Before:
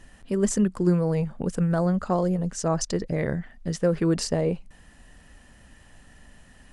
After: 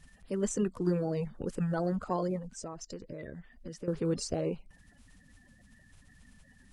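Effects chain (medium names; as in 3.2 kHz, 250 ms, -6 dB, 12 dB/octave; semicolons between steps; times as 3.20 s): coarse spectral quantiser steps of 30 dB; 2.38–3.88 s: compression 6:1, threshold -32 dBFS, peak gain reduction 13.5 dB; trim -7.5 dB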